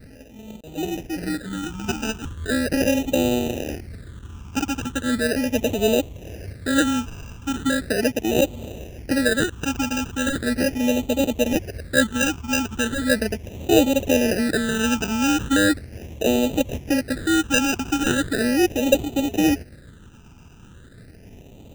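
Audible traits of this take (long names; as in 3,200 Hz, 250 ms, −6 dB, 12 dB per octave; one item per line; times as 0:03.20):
aliases and images of a low sample rate 1,100 Hz, jitter 0%
phaser sweep stages 8, 0.38 Hz, lowest notch 550–1,600 Hz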